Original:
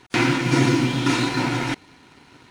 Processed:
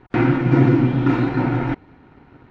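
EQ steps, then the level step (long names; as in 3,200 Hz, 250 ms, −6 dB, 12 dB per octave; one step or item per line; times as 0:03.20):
low-pass filter 1,300 Hz 12 dB per octave
low-shelf EQ 78 Hz +10 dB
notch filter 1,000 Hz, Q 12
+3.0 dB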